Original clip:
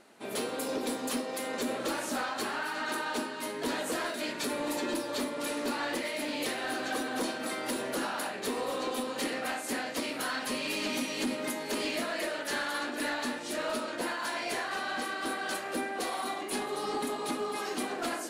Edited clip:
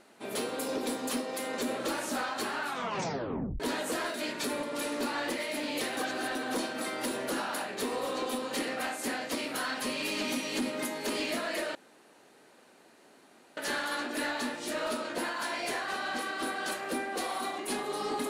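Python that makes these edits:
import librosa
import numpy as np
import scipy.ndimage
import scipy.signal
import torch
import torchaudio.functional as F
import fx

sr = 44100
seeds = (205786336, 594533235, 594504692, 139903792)

y = fx.edit(x, sr, fx.tape_stop(start_s=2.61, length_s=0.99),
    fx.cut(start_s=4.63, length_s=0.65),
    fx.reverse_span(start_s=6.62, length_s=0.38),
    fx.insert_room_tone(at_s=12.4, length_s=1.82), tone=tone)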